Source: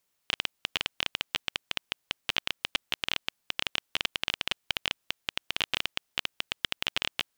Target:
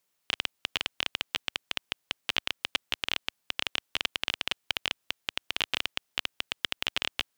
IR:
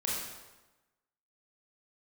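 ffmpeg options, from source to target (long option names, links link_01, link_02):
-af "highpass=frequency=83:poles=1"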